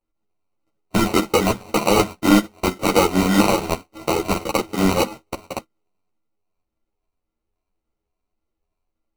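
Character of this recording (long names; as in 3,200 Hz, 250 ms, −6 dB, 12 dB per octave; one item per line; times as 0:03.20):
a buzz of ramps at a fixed pitch in blocks of 32 samples
phaser sweep stages 2, 1.8 Hz, lowest notch 640–4,500 Hz
aliases and images of a low sample rate 1,700 Hz, jitter 0%
a shimmering, thickened sound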